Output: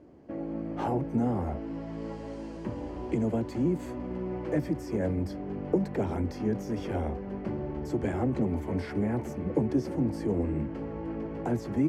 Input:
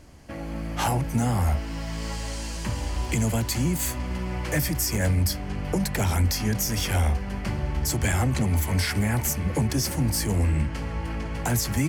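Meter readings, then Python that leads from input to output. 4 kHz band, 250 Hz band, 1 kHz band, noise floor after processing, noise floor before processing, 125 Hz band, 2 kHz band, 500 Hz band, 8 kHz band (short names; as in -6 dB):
-21.5 dB, -0.5 dB, -6.0 dB, -40 dBFS, -33 dBFS, -9.5 dB, -14.0 dB, +1.5 dB, under -25 dB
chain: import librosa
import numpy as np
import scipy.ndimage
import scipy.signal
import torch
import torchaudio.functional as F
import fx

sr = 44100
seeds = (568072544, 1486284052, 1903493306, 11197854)

y = fx.bandpass_q(x, sr, hz=360.0, q=1.7)
y = y * 10.0 ** (4.5 / 20.0)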